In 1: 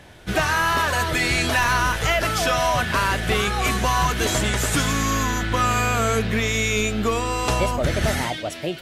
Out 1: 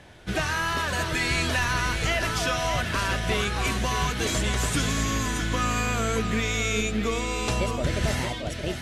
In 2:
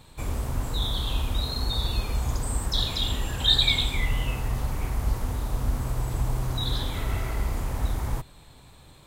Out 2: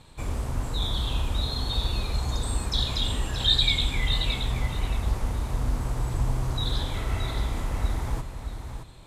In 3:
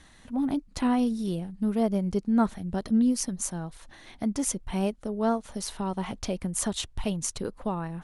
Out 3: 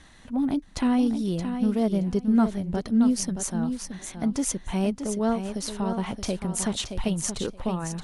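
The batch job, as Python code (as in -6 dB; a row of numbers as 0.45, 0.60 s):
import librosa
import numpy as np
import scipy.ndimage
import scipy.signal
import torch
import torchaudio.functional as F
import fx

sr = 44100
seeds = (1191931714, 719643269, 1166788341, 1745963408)

y = scipy.signal.sosfilt(scipy.signal.bessel(8, 10000.0, 'lowpass', norm='mag', fs=sr, output='sos'), x)
y = fx.dynamic_eq(y, sr, hz=930.0, q=0.78, threshold_db=-34.0, ratio=4.0, max_db=-5)
y = fx.echo_feedback(y, sr, ms=623, feedback_pct=17, wet_db=-8)
y = y * 10.0 ** (-26 / 20.0) / np.sqrt(np.mean(np.square(y)))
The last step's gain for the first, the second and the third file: -3.5, -0.5, +2.5 dB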